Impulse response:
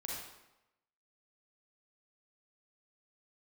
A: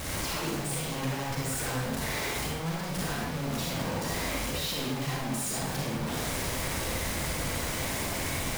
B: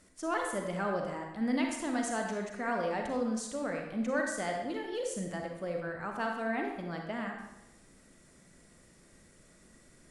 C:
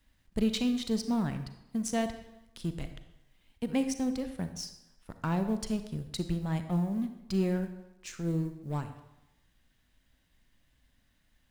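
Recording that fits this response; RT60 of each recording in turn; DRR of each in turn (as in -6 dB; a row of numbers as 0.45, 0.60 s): A; 0.95, 0.95, 0.95 s; -4.0, 1.5, 8.5 dB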